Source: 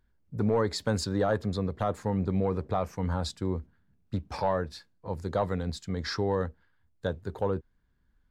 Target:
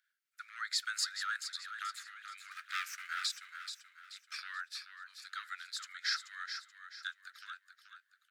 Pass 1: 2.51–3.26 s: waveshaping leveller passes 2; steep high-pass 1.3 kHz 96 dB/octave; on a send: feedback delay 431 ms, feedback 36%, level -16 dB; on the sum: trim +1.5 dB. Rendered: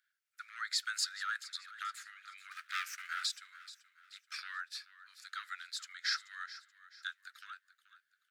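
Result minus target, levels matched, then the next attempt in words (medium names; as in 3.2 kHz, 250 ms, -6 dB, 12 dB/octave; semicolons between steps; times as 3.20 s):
echo-to-direct -7.5 dB
2.51–3.26 s: waveshaping leveller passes 2; steep high-pass 1.3 kHz 96 dB/octave; on a send: feedback delay 431 ms, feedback 36%, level -8.5 dB; on the sum: trim +1.5 dB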